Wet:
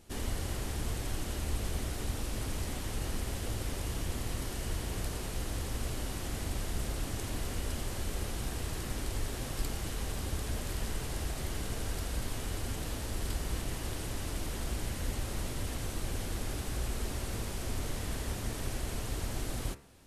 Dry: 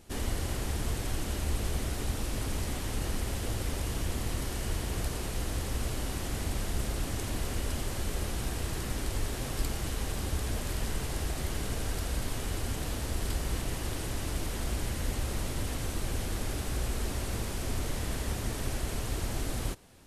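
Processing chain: de-hum 68.2 Hz, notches 39; gain -2.5 dB

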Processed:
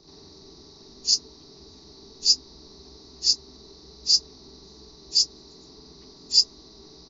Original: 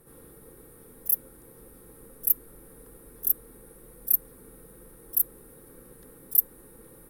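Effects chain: inharmonic rescaling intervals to 76%; doubler 23 ms -14 dB; gain +3.5 dB

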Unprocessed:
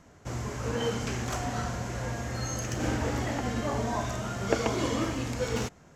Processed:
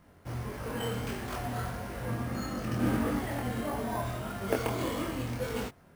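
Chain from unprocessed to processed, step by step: chorus 1.6 Hz, delay 20 ms, depth 4.8 ms; careless resampling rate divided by 4×, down filtered, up hold; 2.08–3.19 small resonant body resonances 220/1200 Hz, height 9 dB, ringing for 25 ms

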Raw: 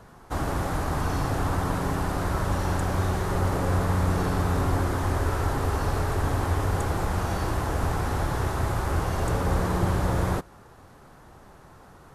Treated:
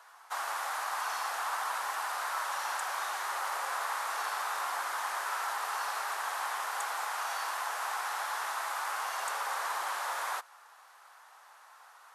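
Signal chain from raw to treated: HPF 870 Hz 24 dB/oct

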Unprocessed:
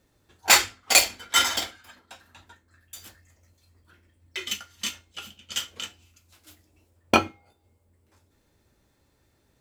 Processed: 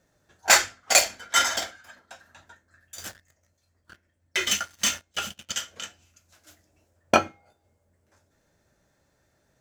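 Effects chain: fifteen-band EQ 160 Hz +7 dB, 630 Hz +10 dB, 1600 Hz +9 dB, 6300 Hz +8 dB; 2.98–5.52 sample leveller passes 3; gain -5.5 dB

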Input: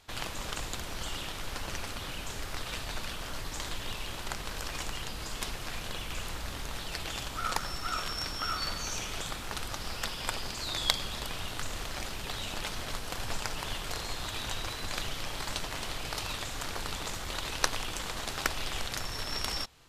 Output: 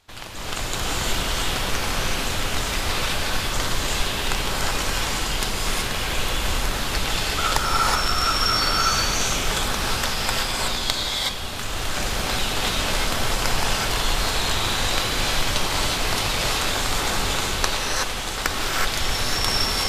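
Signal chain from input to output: AGC gain up to 10 dB; non-linear reverb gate 0.4 s rising, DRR -3.5 dB; gain -1 dB

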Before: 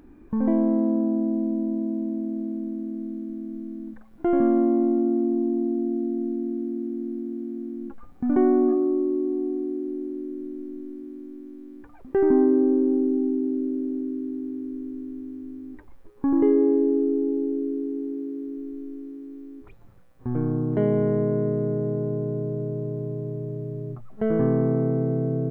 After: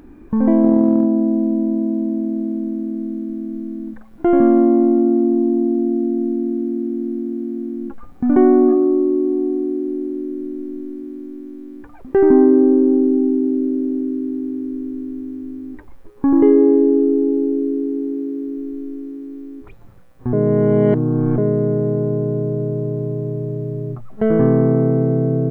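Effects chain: 0.63–1.06 transient shaper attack +8 dB, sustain 0 dB; 20.33–21.38 reverse; gain +7.5 dB

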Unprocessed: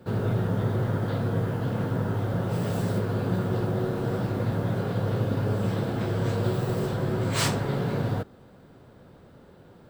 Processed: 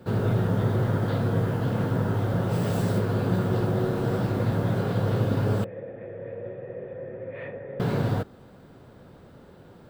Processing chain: 5.64–7.8 vocal tract filter e; gain +2 dB

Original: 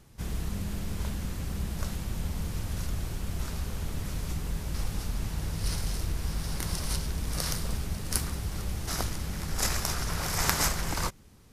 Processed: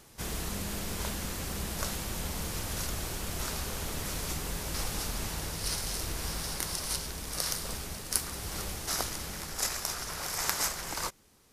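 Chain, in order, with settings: tone controls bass -11 dB, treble +3 dB; vocal rider within 5 dB 0.5 s

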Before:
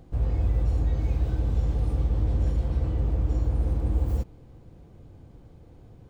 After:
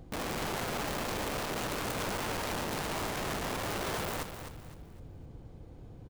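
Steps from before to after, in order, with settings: wrapped overs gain 30.5 dB; feedback echo 0.256 s, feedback 34%, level -9 dB

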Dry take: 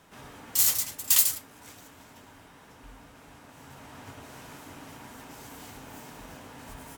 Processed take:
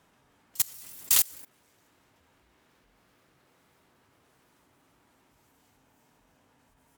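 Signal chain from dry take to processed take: echoes that change speed 0.301 s, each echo +5 st, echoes 3; level quantiser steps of 20 dB; added harmonics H 7 -22 dB, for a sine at -8 dBFS; gain +1 dB

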